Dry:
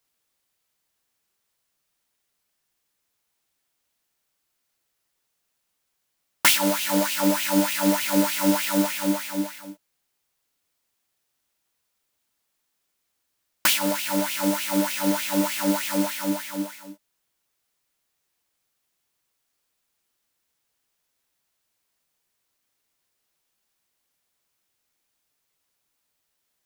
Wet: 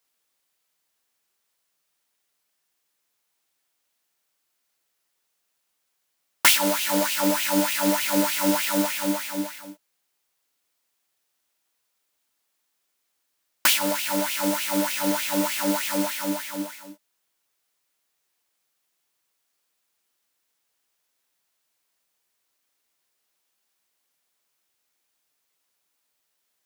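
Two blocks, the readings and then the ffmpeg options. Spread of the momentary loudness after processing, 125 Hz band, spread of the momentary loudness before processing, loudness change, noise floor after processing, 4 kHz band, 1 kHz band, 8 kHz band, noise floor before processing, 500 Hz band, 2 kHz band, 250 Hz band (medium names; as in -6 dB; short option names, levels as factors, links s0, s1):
10 LU, no reading, 9 LU, 0.0 dB, -76 dBFS, +1.0 dB, +0.5 dB, +1.0 dB, -77 dBFS, 0.0 dB, +1.0 dB, -2.5 dB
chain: -af "lowshelf=f=170:g=-11.5,volume=1.12"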